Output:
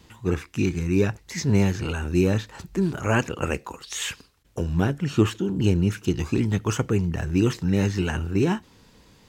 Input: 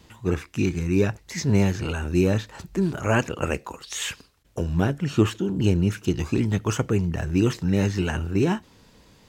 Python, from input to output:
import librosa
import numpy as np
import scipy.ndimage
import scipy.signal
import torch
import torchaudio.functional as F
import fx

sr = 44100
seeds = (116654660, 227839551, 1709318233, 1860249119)

y = fx.peak_eq(x, sr, hz=620.0, db=-3.5, octaves=0.32)